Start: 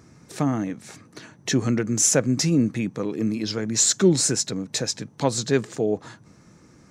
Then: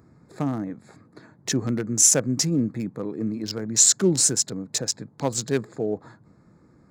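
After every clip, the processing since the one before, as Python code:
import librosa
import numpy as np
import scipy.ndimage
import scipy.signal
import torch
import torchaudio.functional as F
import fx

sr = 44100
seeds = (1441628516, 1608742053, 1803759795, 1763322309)

y = fx.wiener(x, sr, points=15)
y = fx.high_shelf(y, sr, hz=5400.0, db=11.0)
y = y * librosa.db_to_amplitude(-3.0)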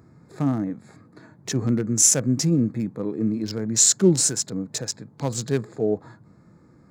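y = fx.hpss(x, sr, part='harmonic', gain_db=8)
y = y * librosa.db_to_amplitude(-3.5)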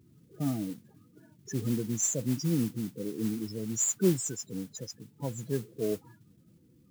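y = fx.spec_topn(x, sr, count=16)
y = fx.mod_noise(y, sr, seeds[0], snr_db=17)
y = y * librosa.db_to_amplitude(-8.0)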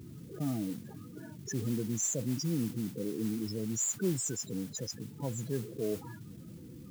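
y = fx.env_flatten(x, sr, amount_pct=50)
y = y * librosa.db_to_amplitude(-7.5)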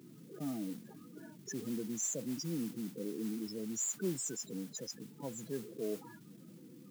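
y = scipy.signal.sosfilt(scipy.signal.butter(4, 170.0, 'highpass', fs=sr, output='sos'), x)
y = y * librosa.db_to_amplitude(-4.0)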